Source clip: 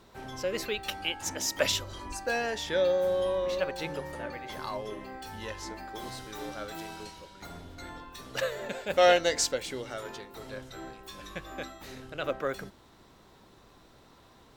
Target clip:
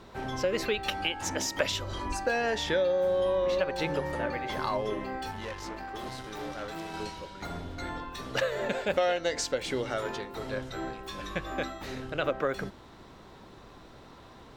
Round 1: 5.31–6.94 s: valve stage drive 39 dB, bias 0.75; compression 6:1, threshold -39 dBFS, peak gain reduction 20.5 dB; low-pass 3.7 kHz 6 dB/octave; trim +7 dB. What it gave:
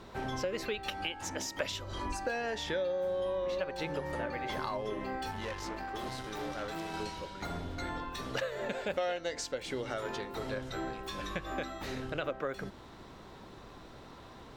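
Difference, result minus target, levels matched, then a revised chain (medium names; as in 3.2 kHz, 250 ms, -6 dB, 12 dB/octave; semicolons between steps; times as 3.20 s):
compression: peak gain reduction +6.5 dB
5.31–6.94 s: valve stage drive 39 dB, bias 0.75; compression 6:1, threshold -31 dBFS, peak gain reduction 14 dB; low-pass 3.7 kHz 6 dB/octave; trim +7 dB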